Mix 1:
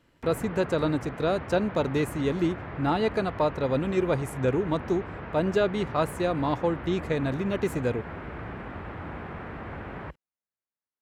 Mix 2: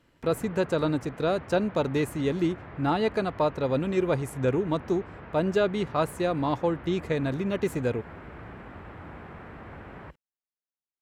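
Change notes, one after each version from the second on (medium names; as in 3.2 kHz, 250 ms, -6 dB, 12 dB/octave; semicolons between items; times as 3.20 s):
background -5.5 dB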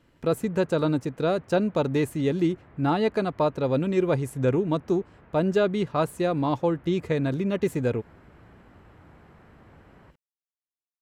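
background -12.0 dB; master: add bass shelf 490 Hz +3.5 dB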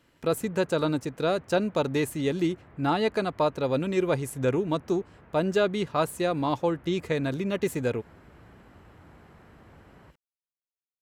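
speech: add tilt EQ +1.5 dB/octave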